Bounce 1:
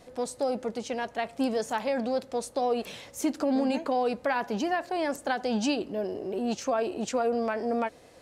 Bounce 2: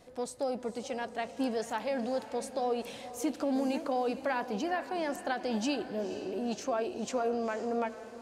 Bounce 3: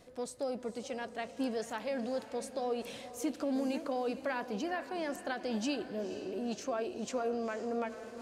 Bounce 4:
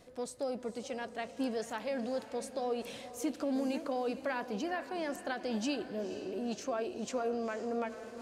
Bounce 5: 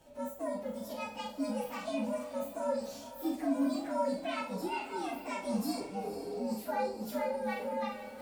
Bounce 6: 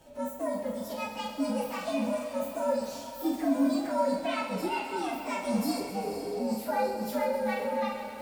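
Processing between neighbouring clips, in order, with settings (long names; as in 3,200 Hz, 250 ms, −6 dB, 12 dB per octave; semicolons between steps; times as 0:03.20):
feedback delay with all-pass diffusion 483 ms, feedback 43%, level −12 dB; level −4.5 dB
parametric band 830 Hz −5 dB 0.4 octaves; reversed playback; upward compression, threshold −37 dBFS; reversed playback; level −2.5 dB
no processing that can be heard
partials spread apart or drawn together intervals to 122%; four-comb reverb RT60 0.33 s, combs from 25 ms, DRR 1.5 dB; level +1 dB
feedback echo with a high-pass in the loop 130 ms, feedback 77%, high-pass 420 Hz, level −10.5 dB; level +4.5 dB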